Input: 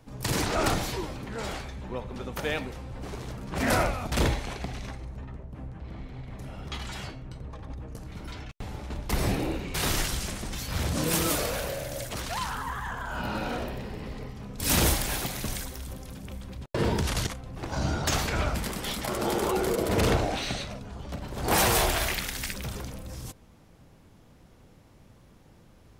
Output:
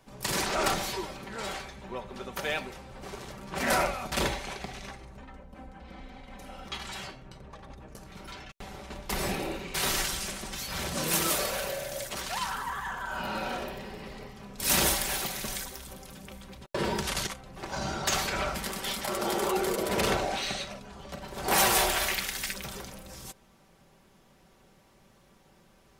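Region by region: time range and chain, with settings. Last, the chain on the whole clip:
5.2–6.68 notches 50/100/150/200/250/300/350/400 Hz + comb 3.9 ms, depth 66%
whole clip: low shelf 300 Hz -10 dB; comb 5.2 ms, depth 45%

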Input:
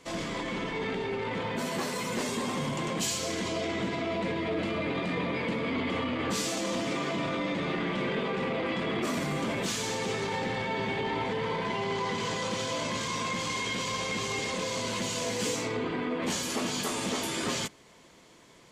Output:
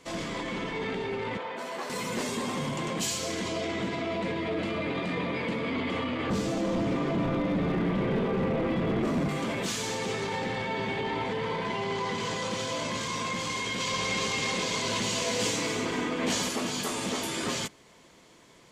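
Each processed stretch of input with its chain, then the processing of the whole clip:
1.37–1.9 HPF 650 Hz + tilt -3 dB/oct
6.3–9.29 tilt -3.5 dB/oct + notches 50/100/150/200/250/300/350 Hz + hard clip -23 dBFS
13.8–16.49 LPF 3900 Hz 6 dB/oct + high shelf 2200 Hz +8.5 dB + echo with dull and thin repeats by turns 0.119 s, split 970 Hz, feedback 66%, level -3.5 dB
whole clip: dry

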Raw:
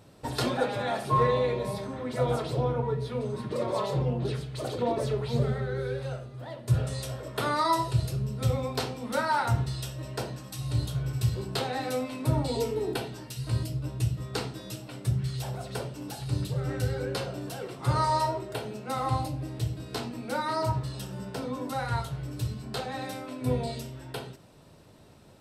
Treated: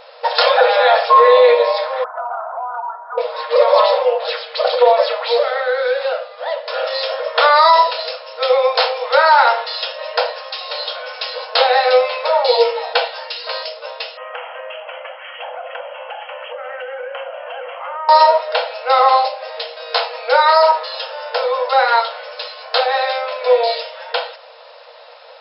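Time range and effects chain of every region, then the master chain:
2.04–3.18 Chebyshev band-pass 670–1500 Hz, order 4 + compressor 4:1, threshold -41 dBFS
14.17–18.09 brick-wall FIR band-pass 480–3300 Hz + compressor 5:1, threshold -45 dBFS
whole clip: FFT band-pass 460–5400 Hz; maximiser +20.5 dB; gain -1 dB

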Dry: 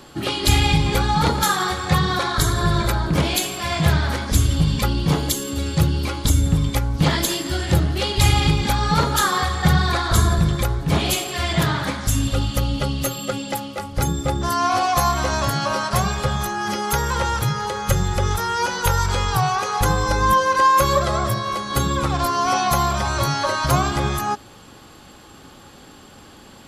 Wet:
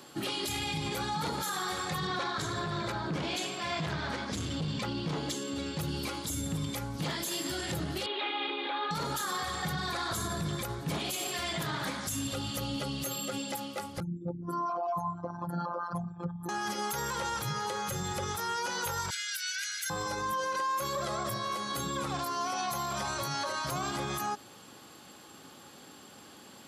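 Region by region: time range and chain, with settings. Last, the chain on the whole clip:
2.07–5.79 HPF 60 Hz + overloaded stage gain 15.5 dB + air absorption 93 m
8.06–8.91 delta modulation 64 kbps, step -28 dBFS + Chebyshev band-pass 290–3800 Hz, order 5
14–16.49 formant sharpening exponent 3 + robotiser 173 Hz
19.1–19.9 steep high-pass 1500 Hz 96 dB/oct + comb 1.4 ms, depth 67%
whole clip: HPF 150 Hz 12 dB/oct; high shelf 5100 Hz +5.5 dB; limiter -17.5 dBFS; gain -7.5 dB

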